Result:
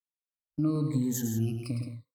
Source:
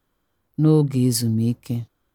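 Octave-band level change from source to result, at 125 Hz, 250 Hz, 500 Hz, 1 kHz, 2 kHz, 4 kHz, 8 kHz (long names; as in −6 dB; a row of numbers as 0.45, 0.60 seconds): −10.5 dB, −9.0 dB, −14.5 dB, −10.5 dB, can't be measured, −16.0 dB, −8.5 dB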